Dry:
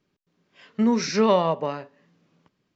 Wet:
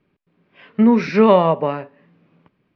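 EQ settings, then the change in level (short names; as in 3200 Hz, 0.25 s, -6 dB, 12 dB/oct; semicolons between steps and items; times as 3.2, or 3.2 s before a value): air absorption 370 m; bell 2400 Hz +5 dB 0.34 oct; +8.0 dB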